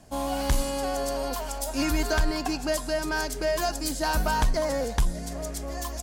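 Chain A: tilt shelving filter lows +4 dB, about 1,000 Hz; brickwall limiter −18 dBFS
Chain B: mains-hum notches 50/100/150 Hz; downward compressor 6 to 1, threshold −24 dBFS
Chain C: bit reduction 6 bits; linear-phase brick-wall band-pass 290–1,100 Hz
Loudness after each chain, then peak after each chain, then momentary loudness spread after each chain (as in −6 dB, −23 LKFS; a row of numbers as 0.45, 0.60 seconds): −28.5, −30.0, −31.5 LKFS; −18.0, −16.5, −17.5 dBFS; 5, 5, 10 LU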